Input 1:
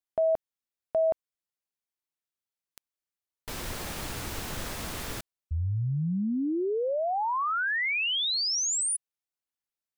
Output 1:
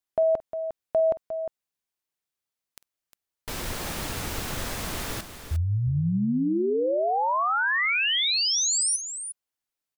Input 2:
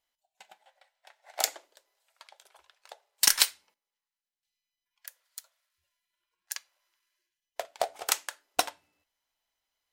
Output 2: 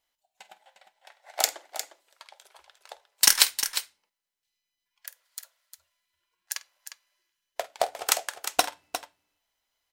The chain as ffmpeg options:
-af "aecho=1:1:49|355:0.133|0.316,volume=3.5dB"

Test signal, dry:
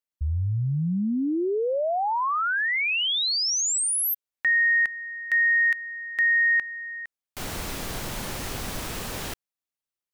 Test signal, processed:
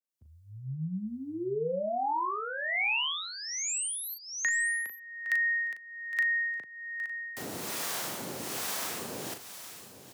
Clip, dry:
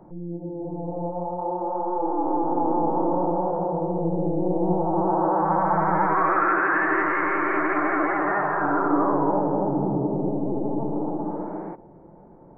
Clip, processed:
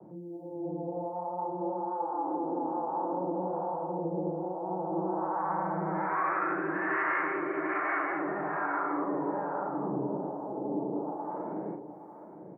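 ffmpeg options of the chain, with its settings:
-filter_complex "[0:a]bass=f=250:g=-4,treble=f=4k:g=7,aecho=1:1:813:0.2,acrossover=split=150|310|820|2000[a][b][c][d][e];[a]acompressor=threshold=-48dB:ratio=4[f];[b]acompressor=threshold=-37dB:ratio=4[g];[c]acompressor=threshold=-34dB:ratio=4[h];[d]acompressor=threshold=-34dB:ratio=4[i];[e]acompressor=threshold=-29dB:ratio=4[j];[f][g][h][i][j]amix=inputs=5:normalize=0,acrossover=split=620[k][l];[k]aeval=exprs='val(0)*(1-0.7/2+0.7/2*cos(2*PI*1.2*n/s))':c=same[m];[l]aeval=exprs='val(0)*(1-0.7/2-0.7/2*cos(2*PI*1.2*n/s))':c=same[n];[m][n]amix=inputs=2:normalize=0,highpass=f=98:w=0.5412,highpass=f=98:w=1.3066,asplit=2[o][p];[p]adelay=38,volume=-7dB[q];[o][q]amix=inputs=2:normalize=0,adynamicequalizer=threshold=0.00708:dfrequency=2500:dqfactor=0.7:tfrequency=2500:tqfactor=0.7:attack=5:release=100:ratio=0.375:range=2.5:mode=cutabove:tftype=highshelf"

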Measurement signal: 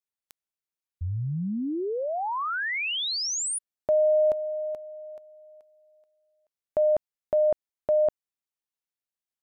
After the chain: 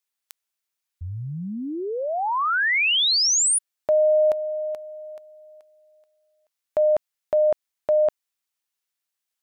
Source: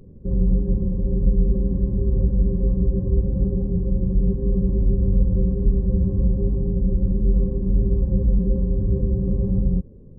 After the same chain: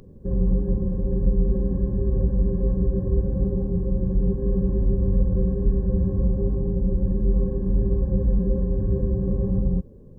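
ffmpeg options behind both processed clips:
-af "tiltshelf=f=660:g=-6,volume=3.5dB"

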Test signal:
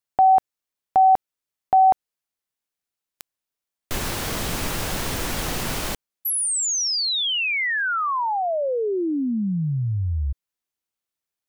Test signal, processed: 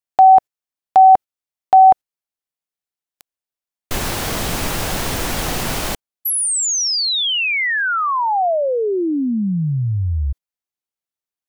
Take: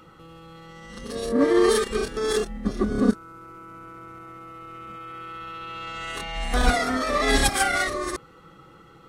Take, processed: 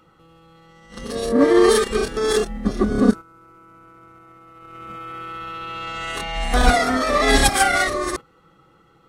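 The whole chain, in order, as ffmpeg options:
-af "agate=range=-10dB:threshold=-41dB:ratio=16:release=120:detection=peak,equalizer=f=730:w=2.8:g=2.5,volume=4.5dB"

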